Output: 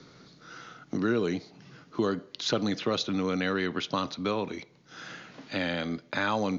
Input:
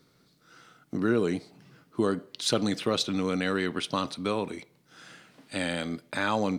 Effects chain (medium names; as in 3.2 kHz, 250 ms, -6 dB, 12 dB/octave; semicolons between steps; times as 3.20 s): Chebyshev low-pass 6.8 kHz, order 8; three bands compressed up and down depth 40%